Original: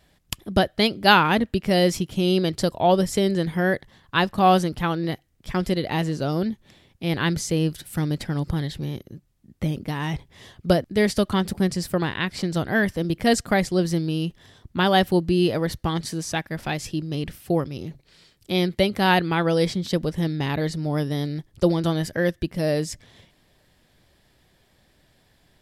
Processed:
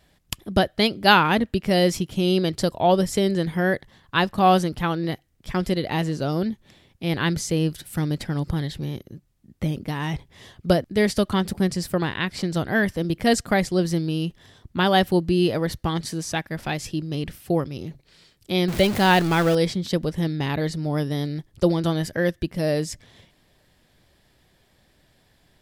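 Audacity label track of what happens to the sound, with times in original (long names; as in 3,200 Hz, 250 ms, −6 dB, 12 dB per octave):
18.680000	19.550000	converter with a step at zero of −24 dBFS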